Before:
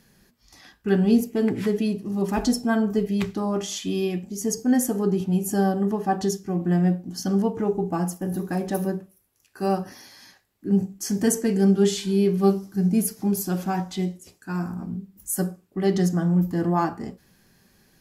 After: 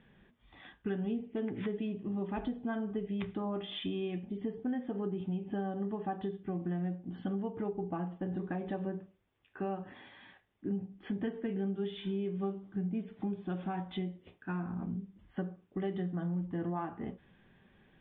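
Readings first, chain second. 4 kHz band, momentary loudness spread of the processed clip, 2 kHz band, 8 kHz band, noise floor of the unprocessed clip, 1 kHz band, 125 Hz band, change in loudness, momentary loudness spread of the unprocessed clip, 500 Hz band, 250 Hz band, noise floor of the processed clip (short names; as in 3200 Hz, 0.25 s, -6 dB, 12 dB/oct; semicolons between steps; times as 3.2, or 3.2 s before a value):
-12.0 dB, 7 LU, -12.0 dB, under -40 dB, -63 dBFS, -13.0 dB, -13.0 dB, -13.5 dB, 9 LU, -13.0 dB, -13.0 dB, -69 dBFS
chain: Chebyshev low-pass 3600 Hz, order 8; compressor 5:1, threshold -31 dBFS, peak gain reduction 15.5 dB; gain -2.5 dB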